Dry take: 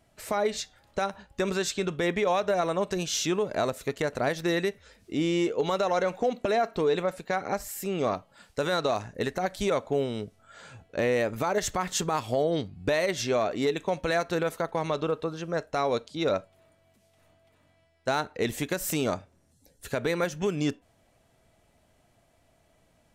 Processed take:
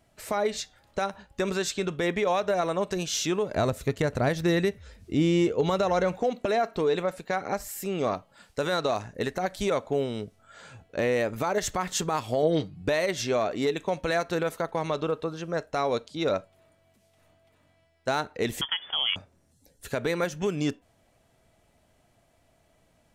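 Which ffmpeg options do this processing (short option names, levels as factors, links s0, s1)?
-filter_complex "[0:a]asettb=1/sr,asplit=3[s0][s1][s2];[s0]atrim=end=3.554[s3];[s1]atrim=start=3.55:end=6.19,asetpts=PTS-STARTPTS,afade=t=in:d=0.004:c=qsin,afade=t=out:st=2.636:d=0.004:c=qsin,equalizer=f=67:w=0.49:g=14.5[s4];[s2]atrim=start=6.186[s5];[s3][s4]acrossfade=d=0.004:c1=hsin:c2=qsin[s6];[s6][s5]acrossfade=d=0.004:c1=qsin:c2=hsin,asettb=1/sr,asplit=3[s7][s8][s9];[s7]atrim=end=12.424[s10];[s8]atrim=start=12.42:end=12.82,asetpts=PTS-STARTPTS,afade=t=in:d=0.004:c=qsin,afade=t=out:st=0.396:d=0.004:c=qsin,aecho=1:1:6.4:0.59,atrim=end_sample=17640[s11];[s9]atrim=start=12.816[s12];[s10][s11]acrossfade=d=0.004:c1=hsin:c2=qsin[s13];[s13][s12]acrossfade=d=0.004:c1=qsin:c2=hsin,asettb=1/sr,asplit=3[s14][s15][s16];[s14]atrim=end=18.614[s17];[s15]atrim=start=18.61:end=19.16,asetpts=PTS-STARTPTS,afade=t=in:d=0.004:c=qsin,afade=t=out:st=0.546:d=0.004:c=qsin,lowpass=f=3000:t=q:w=0.5098,lowpass=f=3000:t=q:w=0.6013,lowpass=f=3000:t=q:w=0.9,lowpass=f=3000:t=q:w=2.563,afreqshift=-3500[s18];[s16]atrim=start=19.156[s19];[s17][s18]acrossfade=d=0.004:c1=hsin:c2=qsin[s20];[s20][s19]acrossfade=d=0.004:c1=qsin:c2=hsin"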